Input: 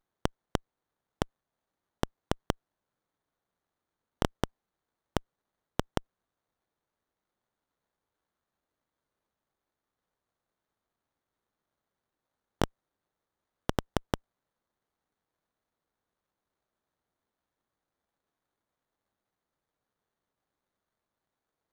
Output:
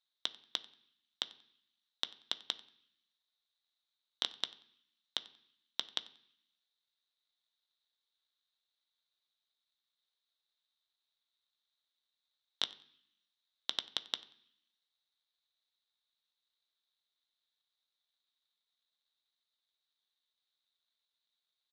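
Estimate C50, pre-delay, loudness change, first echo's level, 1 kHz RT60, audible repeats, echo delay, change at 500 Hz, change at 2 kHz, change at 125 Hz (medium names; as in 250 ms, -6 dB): 17.0 dB, 3 ms, -3.0 dB, -23.0 dB, 0.65 s, 2, 92 ms, -20.0 dB, -6.5 dB, under -30 dB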